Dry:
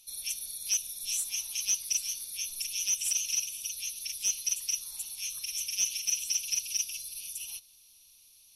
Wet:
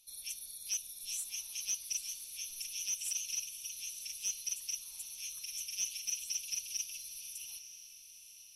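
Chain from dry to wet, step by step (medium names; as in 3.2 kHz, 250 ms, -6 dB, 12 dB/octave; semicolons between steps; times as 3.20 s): echo that smears into a reverb 948 ms, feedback 45%, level -12 dB; trim -7.5 dB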